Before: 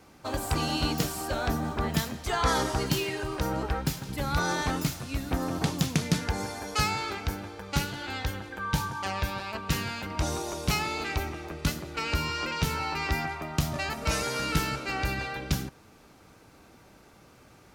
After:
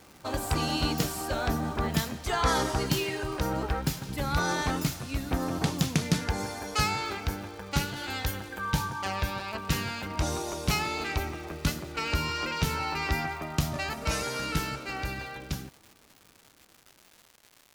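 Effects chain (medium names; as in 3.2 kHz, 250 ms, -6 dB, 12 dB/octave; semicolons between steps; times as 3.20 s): fade out at the end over 4.31 s; 7.96–8.72 s: treble shelf 7.5 kHz +11.5 dB; crackle 320 per s -41 dBFS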